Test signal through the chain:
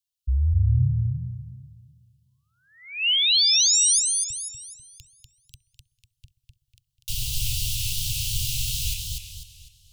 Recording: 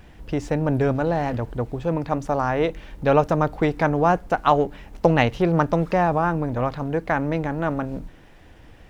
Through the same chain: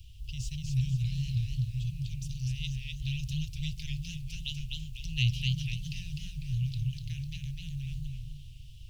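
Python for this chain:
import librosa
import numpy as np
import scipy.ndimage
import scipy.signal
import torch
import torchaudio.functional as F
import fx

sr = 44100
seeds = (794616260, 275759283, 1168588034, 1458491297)

y = scipy.signal.sosfilt(scipy.signal.cheby1(5, 1.0, [130.0, 2800.0], 'bandstop', fs=sr, output='sos'), x)
y = fx.echo_bbd(y, sr, ms=65, stages=1024, feedback_pct=78, wet_db=-22.5)
y = fx.echo_warbled(y, sr, ms=248, feedback_pct=39, rate_hz=2.8, cents=144, wet_db=-3)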